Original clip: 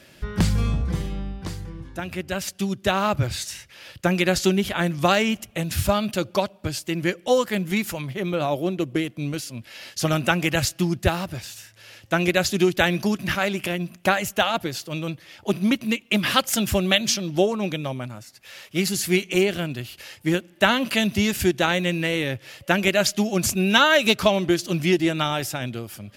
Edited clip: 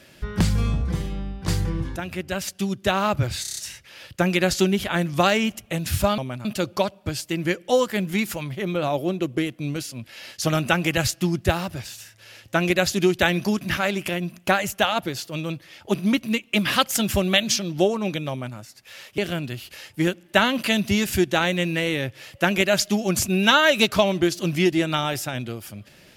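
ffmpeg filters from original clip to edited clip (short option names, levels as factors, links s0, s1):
-filter_complex "[0:a]asplit=11[s0][s1][s2][s3][s4][s5][s6][s7][s8][s9][s10];[s0]atrim=end=1.482[s11];[s1]atrim=start=1.478:end=1.962,asetpts=PTS-STARTPTS,volume=3.35[s12];[s2]atrim=start=1.958:end=3.452[s13];[s3]atrim=start=3.418:end=3.452[s14];[s4]atrim=start=3.418:end=3.452[s15];[s5]atrim=start=3.418:end=3.452[s16];[s6]atrim=start=3.418:end=3.452[s17];[s7]atrim=start=3.418:end=6.032[s18];[s8]atrim=start=17.878:end=18.152[s19];[s9]atrim=start=6.028:end=18.762[s20];[s10]atrim=start=19.448[s21];[s11][s12]acrossfade=d=0.004:c1=hsin:c2=hsin[s22];[s22][s13]acrossfade=d=0.004:c1=hsin:c2=hsin[s23];[s23][s14]acrossfade=d=0.004:c1=hsin:c2=hsin[s24];[s24][s15]acrossfade=d=0.004:c1=hsin:c2=hsin[s25];[s25][s16]acrossfade=d=0.004:c1=hsin:c2=hsin[s26];[s26][s17]acrossfade=d=0.004:c1=hsin:c2=hsin[s27];[s27][s18]acrossfade=d=0.004:c1=hsin:c2=hsin[s28];[s28][s19]acrossfade=d=0.004:c1=hsin:c2=hsin[s29];[s29][s20]acrossfade=d=0.004:c1=hsin:c2=hsin[s30];[s30][s21]acrossfade=d=0.004:c1=hsin:c2=hsin"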